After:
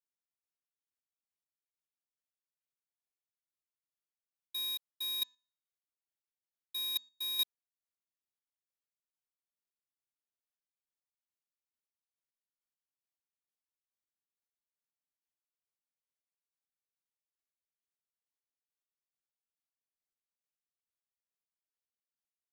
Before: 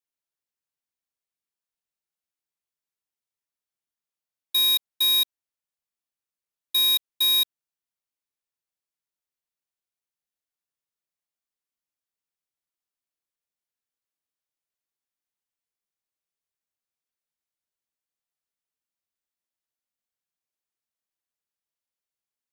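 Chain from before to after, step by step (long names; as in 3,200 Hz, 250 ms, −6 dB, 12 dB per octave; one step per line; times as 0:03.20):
0:05.17–0:07.38: hum removal 250.4 Hz, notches 30
square-wave tremolo 2.3 Hz, depth 60%, duty 30%
level −8.5 dB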